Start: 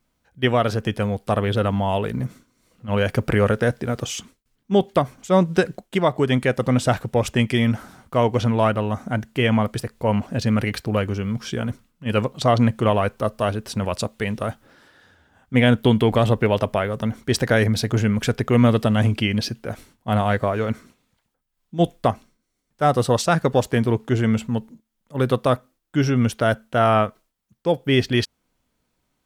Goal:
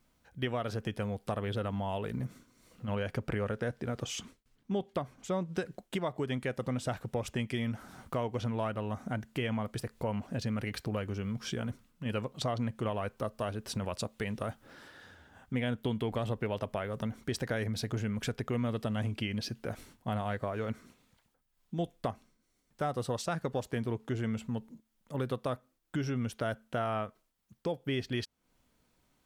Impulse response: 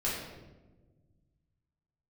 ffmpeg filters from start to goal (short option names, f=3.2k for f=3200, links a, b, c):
-filter_complex "[0:a]asettb=1/sr,asplit=3[a][b][c];[a]atrim=end=2.954[d];[b]atrim=start=2.95:end=5.55,asetpts=PTS-STARTPTS,afade=t=in:d=0.004:c=qsin,afade=t=out:st=2.596:d=0.004:c=qsin,highshelf=f=7.2k:g=-6.5[e];[c]atrim=start=5.546[f];[d][e]acrossfade=d=0.004:c1=hsin:c2=qsin[g];[g][f]acrossfade=d=0.004:c1=qsin:c2=hsin,acompressor=threshold=-36dB:ratio=3"